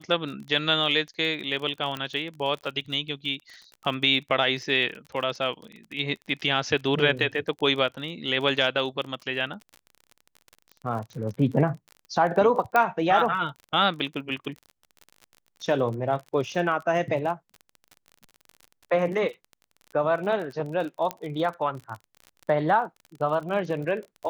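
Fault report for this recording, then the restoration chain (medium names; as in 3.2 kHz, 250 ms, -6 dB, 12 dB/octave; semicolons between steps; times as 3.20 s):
crackle 35 per s -34 dBFS
1.97 s: pop -17 dBFS
12.76 s: pop -10 dBFS
21.11 s: pop -14 dBFS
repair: de-click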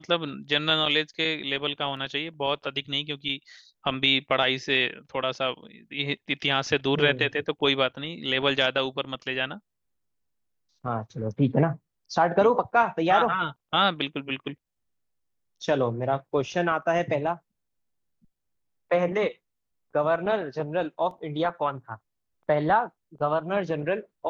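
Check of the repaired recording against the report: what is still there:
1.97 s: pop
21.11 s: pop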